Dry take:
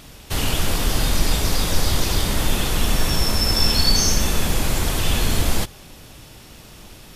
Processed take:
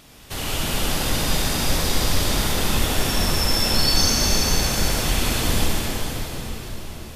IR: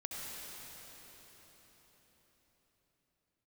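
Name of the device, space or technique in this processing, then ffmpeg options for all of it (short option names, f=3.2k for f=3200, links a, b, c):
cathedral: -filter_complex "[1:a]atrim=start_sample=2205[a];[0:a][a]afir=irnorm=-1:irlink=0,lowshelf=f=130:g=-6"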